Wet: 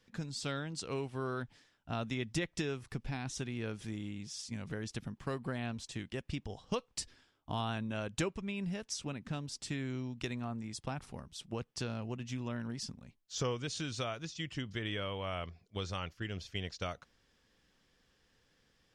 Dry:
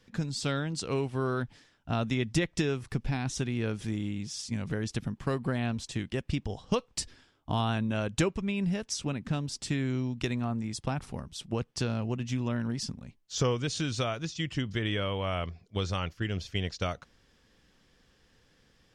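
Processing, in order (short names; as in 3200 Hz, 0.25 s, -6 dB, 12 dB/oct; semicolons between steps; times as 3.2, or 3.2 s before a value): low shelf 400 Hz -3.5 dB; gain -5.5 dB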